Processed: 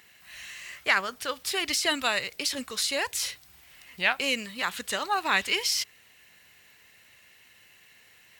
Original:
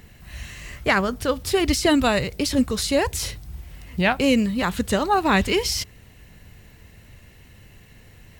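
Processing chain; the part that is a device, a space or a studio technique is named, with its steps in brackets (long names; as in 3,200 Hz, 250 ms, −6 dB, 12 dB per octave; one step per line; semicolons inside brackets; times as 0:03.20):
filter by subtraction (in parallel: low-pass filter 2,200 Hz 12 dB per octave + polarity inversion)
on the sum: level −2.5 dB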